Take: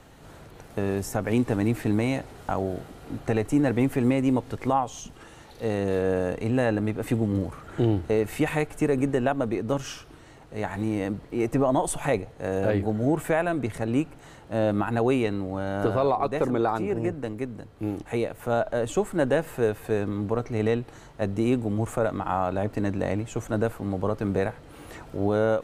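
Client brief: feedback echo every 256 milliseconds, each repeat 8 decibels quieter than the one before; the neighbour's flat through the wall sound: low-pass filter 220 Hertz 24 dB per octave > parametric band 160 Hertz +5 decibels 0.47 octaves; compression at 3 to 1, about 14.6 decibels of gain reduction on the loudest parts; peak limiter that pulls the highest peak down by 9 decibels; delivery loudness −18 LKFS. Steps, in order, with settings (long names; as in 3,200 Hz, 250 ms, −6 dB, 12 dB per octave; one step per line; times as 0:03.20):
downward compressor 3 to 1, threshold −39 dBFS
brickwall limiter −31 dBFS
low-pass filter 220 Hz 24 dB per octave
parametric band 160 Hz +5 dB 0.47 octaves
repeating echo 256 ms, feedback 40%, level −8 dB
level +28.5 dB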